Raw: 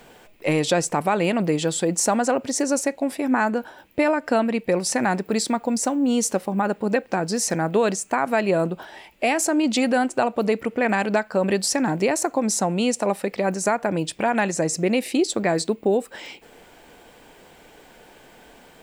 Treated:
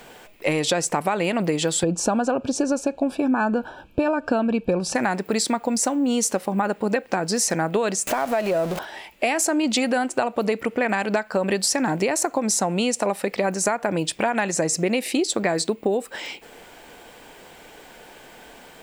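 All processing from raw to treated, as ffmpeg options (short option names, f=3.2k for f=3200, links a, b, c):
-filter_complex "[0:a]asettb=1/sr,asplit=3[a][b][c];[a]atrim=end=1.834[d];[b]atrim=start=1.83:end=4.95,asetpts=PTS-STARTPTS,afade=t=in:d=0.004:c=qsin,afade=t=out:st=3.116:d=0.004:c=qsin,asuperstop=centerf=2000:order=12:qfactor=3.9,aemphasis=mode=reproduction:type=bsi[e];[c]atrim=start=4.946[f];[d][e]acrossfade=d=0.004:c1=hsin:c2=qsin[g];[g][f]acrossfade=d=0.004:c1=qsin:c2=hsin,asettb=1/sr,asplit=3[h][i][j];[h]atrim=end=8.074[k];[i]atrim=start=8.07:end=8.79,asetpts=PTS-STARTPTS,afade=t=in:d=0.004:c=qsin,afade=t=out:st=0.716:d=0.004:c=qsin,aeval=exprs='val(0)+0.5*0.0501*sgn(val(0))':c=same,equalizer=f=620:w=2.5:g=8,acompressor=threshold=-27dB:ratio=2:attack=3.2:release=140:knee=1:detection=peak[l];[j]atrim=start=8.786[m];[k][l]acrossfade=d=0.004:c1=hsin:c2=qsin[n];[n][m]acrossfade=d=0.004:c1=qsin:c2=hsin,lowshelf=f=450:g=-4.5,acompressor=threshold=-23dB:ratio=6,volume=5dB"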